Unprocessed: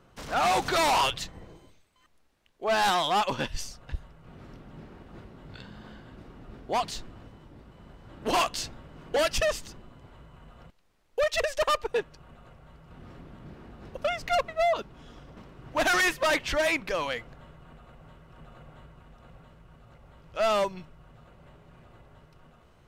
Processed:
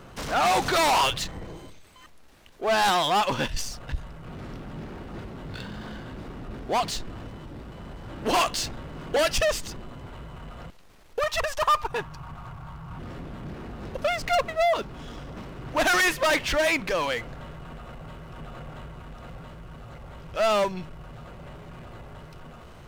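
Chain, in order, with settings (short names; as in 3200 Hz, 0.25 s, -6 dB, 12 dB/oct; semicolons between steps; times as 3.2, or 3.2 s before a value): 11.19–12.99 ten-band EQ 125 Hz +7 dB, 250 Hz -4 dB, 500 Hz -11 dB, 1000 Hz +10 dB, 2000 Hz -4 dB, 4000 Hz -3 dB, 8000 Hz -4 dB; power-law curve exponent 0.7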